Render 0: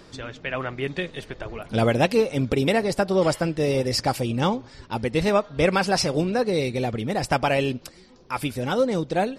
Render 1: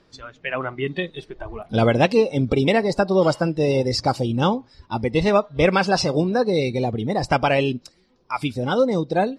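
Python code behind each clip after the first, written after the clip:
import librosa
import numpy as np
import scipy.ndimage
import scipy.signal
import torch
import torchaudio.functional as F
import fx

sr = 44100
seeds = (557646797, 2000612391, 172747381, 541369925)

y = scipy.signal.sosfilt(scipy.signal.butter(2, 5400.0, 'lowpass', fs=sr, output='sos'), x)
y = fx.noise_reduce_blind(y, sr, reduce_db=13)
y = y * 10.0 ** (3.0 / 20.0)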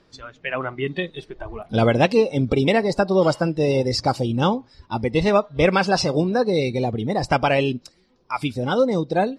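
y = x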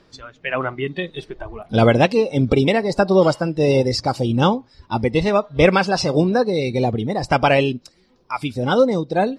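y = x * (1.0 - 0.4 / 2.0 + 0.4 / 2.0 * np.cos(2.0 * np.pi * 1.6 * (np.arange(len(x)) / sr)))
y = y * 10.0 ** (4.0 / 20.0)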